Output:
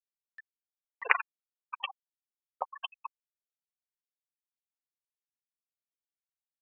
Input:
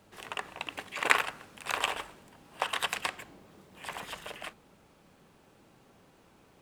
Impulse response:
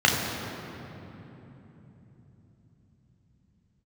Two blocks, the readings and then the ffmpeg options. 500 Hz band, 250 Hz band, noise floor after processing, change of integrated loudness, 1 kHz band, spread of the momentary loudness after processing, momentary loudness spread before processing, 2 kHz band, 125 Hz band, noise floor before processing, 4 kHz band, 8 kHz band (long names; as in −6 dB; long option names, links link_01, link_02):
−8.5 dB, below −25 dB, below −85 dBFS, −1.0 dB, −4.5 dB, 19 LU, 18 LU, −3.5 dB, below −40 dB, −62 dBFS, −9.5 dB, below −35 dB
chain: -af "afftfilt=real='re*gte(hypot(re,im),0.126)':imag='im*gte(hypot(re,im),0.126)':win_size=1024:overlap=0.75,acompressor=mode=upward:threshold=-42dB:ratio=2.5"